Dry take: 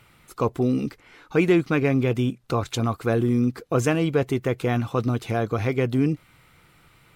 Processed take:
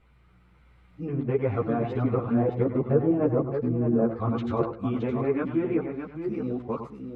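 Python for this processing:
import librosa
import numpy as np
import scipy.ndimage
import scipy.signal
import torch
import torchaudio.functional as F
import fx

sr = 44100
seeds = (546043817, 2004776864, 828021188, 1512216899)

p1 = np.flip(x).copy()
p2 = fx.doppler_pass(p1, sr, speed_mps=5, closest_m=6.2, pass_at_s=2.96)
p3 = fx.env_lowpass_down(p2, sr, base_hz=790.0, full_db=-19.5)
p4 = fx.lowpass(p3, sr, hz=1200.0, slope=6)
p5 = fx.low_shelf(p4, sr, hz=73.0, db=-9.0)
p6 = fx.rider(p5, sr, range_db=5, speed_s=0.5)
p7 = p5 + (p6 * librosa.db_to_amplitude(-2.5))
p8 = p7 + 10.0 ** (-9.0 / 20.0) * np.pad(p7, (int(101 * sr / 1000.0), 0))[:len(p7)]
p9 = fx.dmg_buzz(p8, sr, base_hz=60.0, harmonics=3, level_db=-57.0, tilt_db=-4, odd_only=False)
p10 = fx.echo_multitap(p9, sr, ms=(100, 618), db=(-17.0, -8.0))
y = fx.ensemble(p10, sr)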